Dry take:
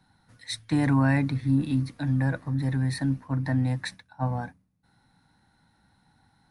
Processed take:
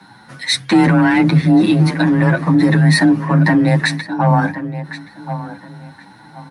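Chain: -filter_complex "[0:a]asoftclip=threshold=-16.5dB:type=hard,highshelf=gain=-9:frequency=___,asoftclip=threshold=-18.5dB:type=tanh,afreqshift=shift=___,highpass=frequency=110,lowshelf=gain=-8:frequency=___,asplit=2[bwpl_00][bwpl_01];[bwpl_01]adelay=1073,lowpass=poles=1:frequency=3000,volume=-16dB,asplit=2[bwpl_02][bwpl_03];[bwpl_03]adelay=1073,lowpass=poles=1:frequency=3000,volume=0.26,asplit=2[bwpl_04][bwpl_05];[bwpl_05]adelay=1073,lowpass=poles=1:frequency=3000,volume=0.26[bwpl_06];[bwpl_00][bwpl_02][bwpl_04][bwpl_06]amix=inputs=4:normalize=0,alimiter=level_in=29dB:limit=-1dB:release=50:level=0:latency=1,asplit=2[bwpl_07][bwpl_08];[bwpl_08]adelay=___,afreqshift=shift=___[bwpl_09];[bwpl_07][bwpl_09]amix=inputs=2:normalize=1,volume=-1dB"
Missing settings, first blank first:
4000, 22, 350, 8.1, 2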